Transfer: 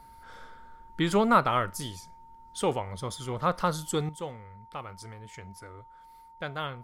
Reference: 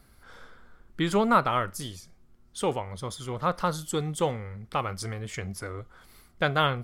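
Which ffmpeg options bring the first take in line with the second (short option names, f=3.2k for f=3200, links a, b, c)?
-af "bandreject=f=910:w=30,asetnsamples=n=441:p=0,asendcmd='4.09 volume volume 10.5dB',volume=0dB"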